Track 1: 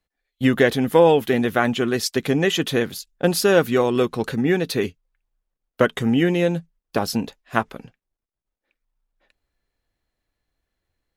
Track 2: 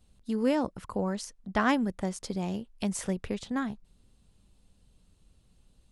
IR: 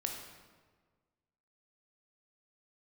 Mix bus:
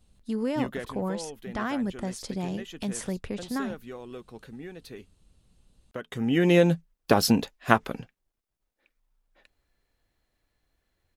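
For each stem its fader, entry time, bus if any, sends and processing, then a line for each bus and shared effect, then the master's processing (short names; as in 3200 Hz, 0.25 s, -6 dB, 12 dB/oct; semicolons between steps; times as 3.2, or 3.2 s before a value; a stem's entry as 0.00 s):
+3.0 dB, 0.15 s, no send, compressor 2:1, threshold -18 dBFS, peak gain reduction 5.5 dB; auto duck -23 dB, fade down 1.00 s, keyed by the second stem
+0.5 dB, 0.00 s, no send, limiter -20.5 dBFS, peak gain reduction 8.5 dB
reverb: off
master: dry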